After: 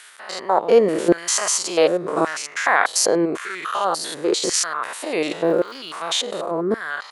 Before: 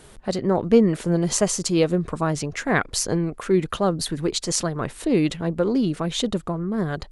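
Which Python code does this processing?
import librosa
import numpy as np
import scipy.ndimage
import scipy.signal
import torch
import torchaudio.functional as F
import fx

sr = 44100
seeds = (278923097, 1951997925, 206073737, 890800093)

y = fx.spec_steps(x, sr, hold_ms=100)
y = fx.filter_lfo_highpass(y, sr, shape='saw_down', hz=0.89, low_hz=360.0, high_hz=1800.0, q=1.9)
y = fx.dmg_crackle(y, sr, seeds[0], per_s=fx.line((5.43, 440.0), (5.96, 100.0)), level_db=-47.0, at=(5.43, 5.96), fade=0.02)
y = F.gain(torch.from_numpy(y), 8.0).numpy()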